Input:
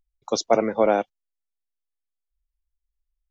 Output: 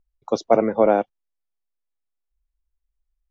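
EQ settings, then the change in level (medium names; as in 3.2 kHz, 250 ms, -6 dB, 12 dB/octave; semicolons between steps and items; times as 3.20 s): low-pass 1.2 kHz 6 dB/octave; +3.5 dB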